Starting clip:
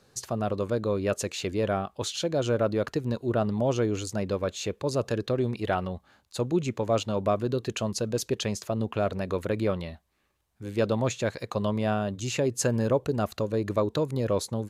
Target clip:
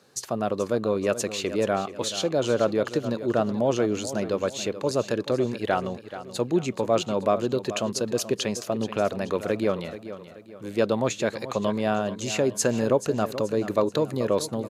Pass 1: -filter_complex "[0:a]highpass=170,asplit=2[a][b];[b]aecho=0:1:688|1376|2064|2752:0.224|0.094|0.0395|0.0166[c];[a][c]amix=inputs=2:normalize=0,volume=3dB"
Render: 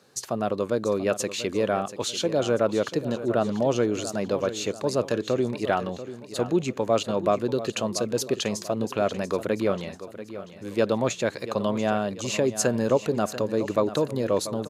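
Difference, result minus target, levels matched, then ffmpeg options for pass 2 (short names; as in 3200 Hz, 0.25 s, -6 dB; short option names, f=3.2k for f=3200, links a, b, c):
echo 0.257 s late
-filter_complex "[0:a]highpass=170,asplit=2[a][b];[b]aecho=0:1:431|862|1293|1724:0.224|0.094|0.0395|0.0166[c];[a][c]amix=inputs=2:normalize=0,volume=3dB"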